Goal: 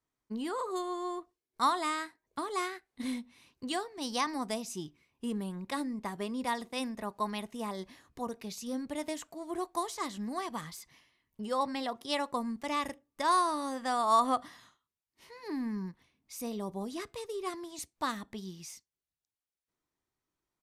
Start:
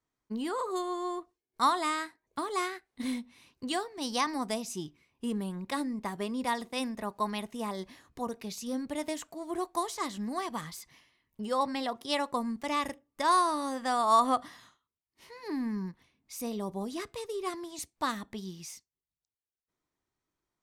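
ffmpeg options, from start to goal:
-af "aresample=32000,aresample=44100,volume=-2dB"

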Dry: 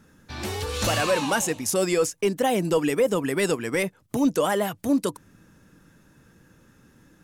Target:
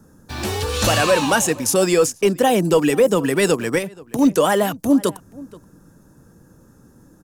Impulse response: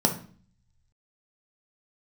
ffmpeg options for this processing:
-filter_complex "[0:a]bandreject=f=2.1k:w=16,acrossover=split=170|1400|5000[a][b][c][d];[c]aeval=exprs='val(0)*gte(abs(val(0)),0.00531)':c=same[e];[a][b][e][d]amix=inputs=4:normalize=0,asplit=2[f][g];[g]adelay=478.1,volume=-21dB,highshelf=f=4k:g=-10.8[h];[f][h]amix=inputs=2:normalize=0,asettb=1/sr,asplit=3[i][j][k];[i]atrim=end=3.784[l];[j]atrim=start=3.78:end=4.19,asetpts=PTS-STARTPTS,afade=t=in:d=0.004:c=qsin,afade=t=out:st=0.406:d=0.004:c=qsin,acompressor=threshold=-29dB:ratio=6[m];[k]atrim=start=4.186[n];[l][m]acrossfade=d=0.004:c1=hsin:c2=qsin[o];[o][n]acrossfade=d=0.004:c1=qsin:c2=hsin,volume=6.5dB"

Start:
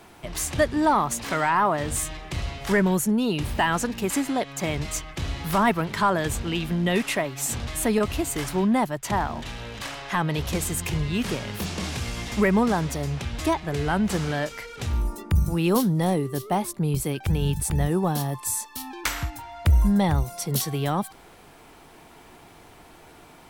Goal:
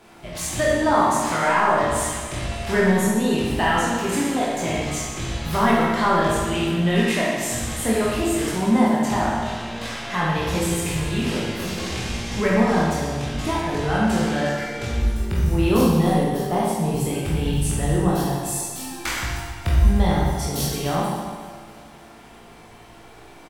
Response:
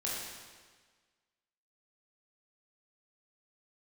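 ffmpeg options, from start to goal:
-filter_complex "[0:a]highshelf=f=10k:g=-6,aecho=1:1:281|562|843|1124|1405:0.112|0.0651|0.0377|0.0219|0.0127[a];[1:a]atrim=start_sample=2205[b];[a][b]afir=irnorm=-1:irlink=0"

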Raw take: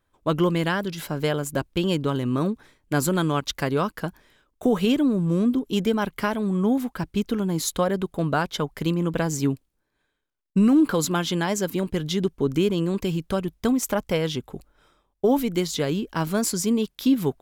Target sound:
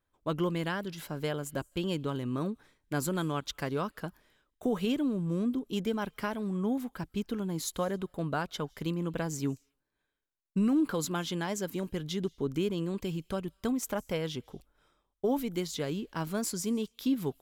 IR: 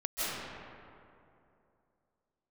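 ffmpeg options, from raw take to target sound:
-filter_complex "[0:a]asplit=2[a][b];[b]aderivative[c];[1:a]atrim=start_sample=2205,afade=t=out:st=0.34:d=0.01,atrim=end_sample=15435[d];[c][d]afir=irnorm=-1:irlink=0,volume=-24.5dB[e];[a][e]amix=inputs=2:normalize=0,volume=-9dB"

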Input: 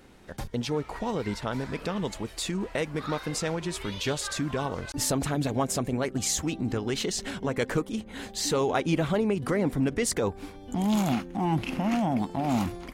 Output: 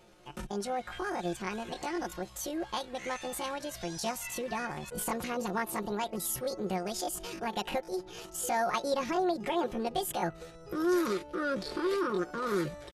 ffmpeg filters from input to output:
-af "aresample=16000,aresample=44100,asetrate=74167,aresample=44100,atempo=0.594604,aecho=1:1:5.6:0.56,volume=-6dB"

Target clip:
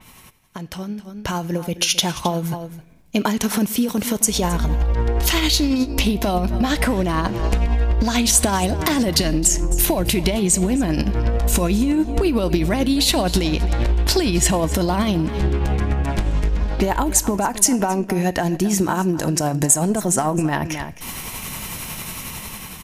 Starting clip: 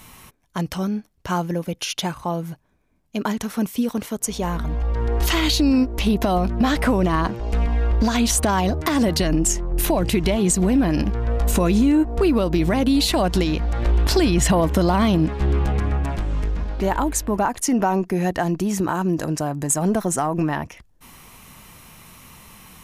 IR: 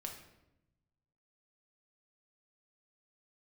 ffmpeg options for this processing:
-filter_complex "[0:a]bandreject=f=1.2k:w=16,aecho=1:1:264:0.141,acompressor=threshold=-30dB:ratio=6,tremolo=f=11:d=0.35,asplit=2[a][b];[b]highshelf=f=1.6k:t=q:w=1.5:g=7[c];[1:a]atrim=start_sample=2205[d];[c][d]afir=irnorm=-1:irlink=0,volume=-13dB[e];[a][e]amix=inputs=2:normalize=0,dynaudnorm=f=510:g=5:m=15dB,adynamicequalizer=threshold=0.0178:dfrequency=4100:dqfactor=0.7:tfrequency=4100:tqfactor=0.7:attack=5:release=100:ratio=0.375:range=2:mode=boostabove:tftype=highshelf,volume=-1dB"

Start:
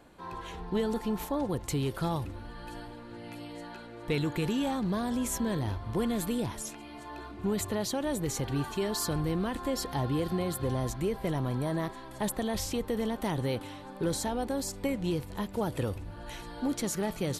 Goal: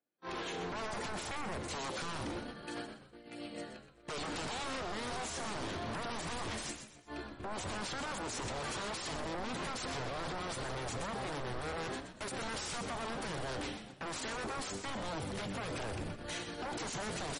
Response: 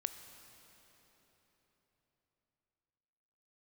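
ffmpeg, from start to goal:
-filter_complex "[0:a]agate=range=-45dB:threshold=-40dB:ratio=16:detection=peak,asetnsamples=n=441:p=0,asendcmd='6.45 highpass f 60;8.79 highpass f 130',highpass=230,equalizer=f=960:t=o:w=0.25:g=-15,alimiter=level_in=6dB:limit=-24dB:level=0:latency=1:release=30,volume=-6dB,acompressor=threshold=-40dB:ratio=2.5,asoftclip=type=tanh:threshold=-31.5dB,aeval=exprs='0.0224*(cos(1*acos(clip(val(0)/0.0224,-1,1)))-cos(1*PI/2))+0.00141*(cos(3*acos(clip(val(0)/0.0224,-1,1)))-cos(3*PI/2))+0.000562*(cos(4*acos(clip(val(0)/0.0224,-1,1)))-cos(4*PI/2))+0.000355*(cos(6*acos(clip(val(0)/0.0224,-1,1)))-cos(6*PI/2))':c=same,aeval=exprs='0.0237*sin(PI/2*5.01*val(0)/0.0237)':c=same,asplit=5[a][b][c][d][e];[b]adelay=124,afreqshift=-79,volume=-8.5dB[f];[c]adelay=248,afreqshift=-158,volume=-17.4dB[g];[d]adelay=372,afreqshift=-237,volume=-26.2dB[h];[e]adelay=496,afreqshift=-316,volume=-35.1dB[i];[a][f][g][h][i]amix=inputs=5:normalize=0[j];[1:a]atrim=start_sample=2205,atrim=end_sample=4410[k];[j][k]afir=irnorm=-1:irlink=0,volume=-2.5dB" -ar 48000 -c:a libmp3lame -b:a 40k

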